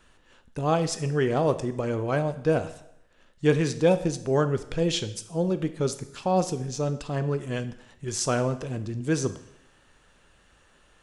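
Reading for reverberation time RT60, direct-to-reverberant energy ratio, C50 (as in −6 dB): 0.80 s, 10.5 dB, 13.5 dB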